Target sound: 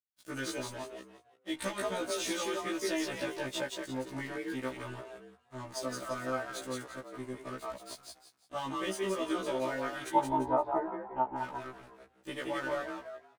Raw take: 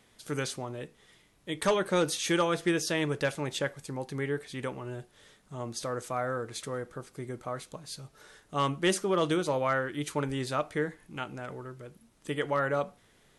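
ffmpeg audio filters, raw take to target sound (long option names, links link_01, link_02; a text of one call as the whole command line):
ffmpeg -i in.wav -filter_complex "[0:a]aecho=1:1:3.3:0.68,acompressor=threshold=-28dB:ratio=6,aeval=exprs='sgn(val(0))*max(abs(val(0))-0.00631,0)':channel_layout=same,asettb=1/sr,asplit=3[link_01][link_02][link_03];[link_01]atrim=end=10.104[link_04];[link_02]atrim=start=10.1:end=11.38,asetpts=PTS-STARTPTS,afade=type=in:duration=0.004:curve=qsin,afade=type=out:start_time=1.276:duration=0.004:curve=qsin,lowpass=frequency=840:width_type=q:width=9.4[link_05];[link_03]atrim=start=11.376[link_06];[link_04][link_05]acrossfade=duration=0.004:curve1=hsin:curve2=qsin[link_07];[link_07][link_06]acrossfade=duration=0.004:curve1=qsin:curve2=hsin,asplit=5[link_08][link_09][link_10][link_11][link_12];[link_09]adelay=172,afreqshift=38,volume=-3dB[link_13];[link_10]adelay=344,afreqshift=76,volume=-12.9dB[link_14];[link_11]adelay=516,afreqshift=114,volume=-22.8dB[link_15];[link_12]adelay=688,afreqshift=152,volume=-32.7dB[link_16];[link_08][link_13][link_14][link_15][link_16]amix=inputs=5:normalize=0,afftfilt=real='re*1.73*eq(mod(b,3),0)':imag='im*1.73*eq(mod(b,3),0)':win_size=2048:overlap=0.75" out.wav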